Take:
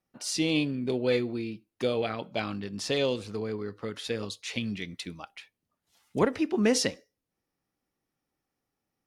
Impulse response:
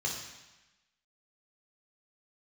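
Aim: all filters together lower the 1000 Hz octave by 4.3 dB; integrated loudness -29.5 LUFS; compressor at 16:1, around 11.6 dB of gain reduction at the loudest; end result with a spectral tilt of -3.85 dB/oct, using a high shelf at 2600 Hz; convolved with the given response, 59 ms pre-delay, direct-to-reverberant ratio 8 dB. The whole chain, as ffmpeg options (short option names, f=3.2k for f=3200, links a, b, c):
-filter_complex "[0:a]equalizer=f=1k:t=o:g=-6.5,highshelf=f=2.6k:g=3,acompressor=threshold=-31dB:ratio=16,asplit=2[a][b];[1:a]atrim=start_sample=2205,adelay=59[c];[b][c]afir=irnorm=-1:irlink=0,volume=-12.5dB[d];[a][d]amix=inputs=2:normalize=0,volume=6.5dB"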